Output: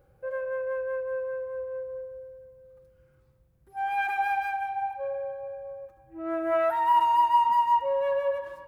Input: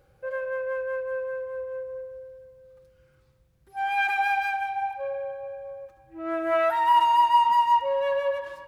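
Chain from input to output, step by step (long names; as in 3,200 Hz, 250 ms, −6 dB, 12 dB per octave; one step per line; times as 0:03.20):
parametric band 4,200 Hz −9.5 dB 2.6 octaves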